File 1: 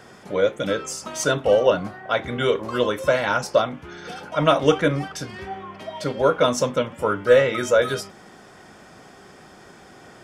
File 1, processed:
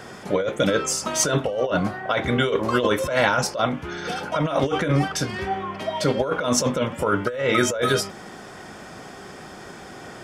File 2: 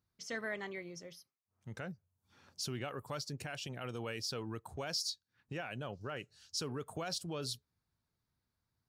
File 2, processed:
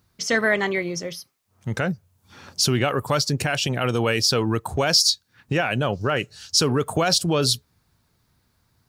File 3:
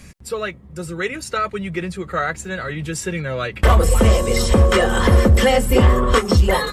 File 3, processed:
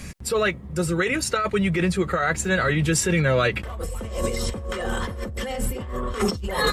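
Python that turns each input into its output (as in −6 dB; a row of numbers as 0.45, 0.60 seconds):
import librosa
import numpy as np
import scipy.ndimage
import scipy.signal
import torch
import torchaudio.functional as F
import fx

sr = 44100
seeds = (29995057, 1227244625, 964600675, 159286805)

y = fx.over_compress(x, sr, threshold_db=-24.0, ratio=-1.0)
y = y * 10.0 ** (-24 / 20.0) / np.sqrt(np.mean(np.square(y)))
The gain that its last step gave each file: +2.5, +19.5, −1.0 decibels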